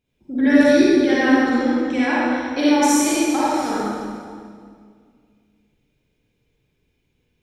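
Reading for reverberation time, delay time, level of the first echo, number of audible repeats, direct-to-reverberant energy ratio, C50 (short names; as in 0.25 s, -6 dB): 2.0 s, none, none, none, -9.0 dB, -6.5 dB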